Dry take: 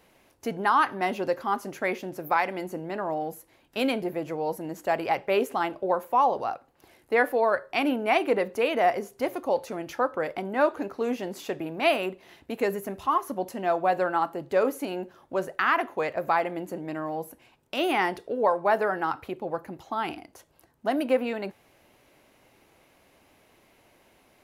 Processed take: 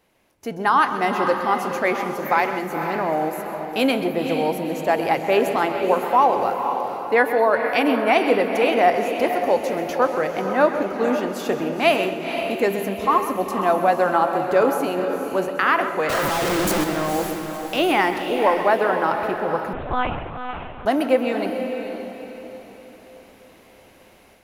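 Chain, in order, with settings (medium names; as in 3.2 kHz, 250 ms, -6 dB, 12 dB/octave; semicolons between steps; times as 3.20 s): 16.09–16.84 s: one-bit comparator; level rider gain up to 12 dB; echo that smears into a reverb 497 ms, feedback 42%, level -7 dB; reverberation RT60 0.80 s, pre-delay 130 ms, DRR 10 dB; 19.73–20.86 s: monotone LPC vocoder at 8 kHz 250 Hz; trim -4.5 dB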